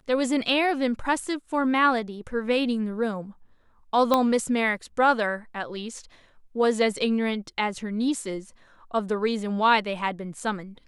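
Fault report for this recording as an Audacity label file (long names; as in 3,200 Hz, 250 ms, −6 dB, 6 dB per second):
4.140000	4.140000	click −8 dBFS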